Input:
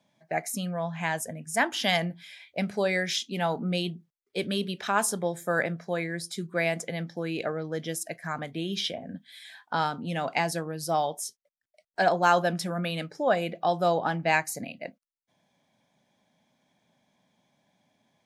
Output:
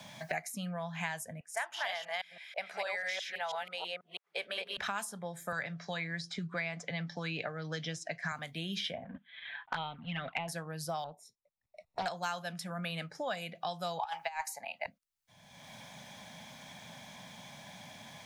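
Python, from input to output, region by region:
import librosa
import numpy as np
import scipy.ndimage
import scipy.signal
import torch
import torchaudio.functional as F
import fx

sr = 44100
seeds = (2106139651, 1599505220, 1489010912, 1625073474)

y = fx.chain(x, sr, fx.reverse_delay(ms=163, wet_db=0.0),
    fx.highpass(hz=540.0, slope=24),
    fx.high_shelf(hz=3500.0, db=-10.0), at=(1.4, 4.77))
y = fx.chain(y, sr, fx.lowpass(hz=6200.0, slope=24),
    fx.comb(ms=6.9, depth=0.34),
    fx.band_squash(depth_pct=70), at=(5.52, 8.32))
y = fx.chain(y, sr, fx.law_mismatch(coded='A'),
    fx.steep_lowpass(hz=3500.0, slope=48),
    fx.env_flanger(rest_ms=8.2, full_db=-25.0), at=(9.04, 10.48))
y = fx.chain(y, sr, fx.moving_average(points=28),
    fx.doppler_dist(depth_ms=0.43), at=(11.04, 12.06))
y = fx.chain(y, sr, fx.highpass_res(hz=860.0, q=8.8),
    fx.over_compress(threshold_db=-20.0, ratio=-0.5), at=(13.99, 14.86))
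y = fx.peak_eq(y, sr, hz=350.0, db=-14.5, octaves=1.3)
y = fx.band_squash(y, sr, depth_pct=100)
y = F.gain(torch.from_numpy(y), -6.5).numpy()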